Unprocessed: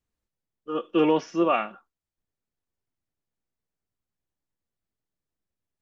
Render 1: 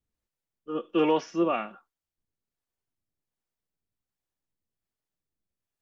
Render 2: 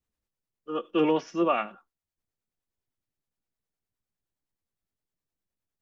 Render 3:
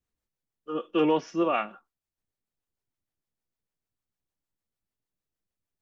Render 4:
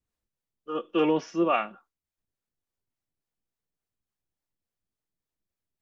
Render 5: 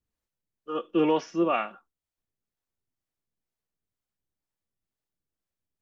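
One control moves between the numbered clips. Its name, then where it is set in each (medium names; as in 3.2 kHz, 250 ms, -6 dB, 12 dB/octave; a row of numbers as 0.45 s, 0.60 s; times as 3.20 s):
harmonic tremolo, rate: 1.3 Hz, 9.7 Hz, 6.6 Hz, 3.5 Hz, 2.1 Hz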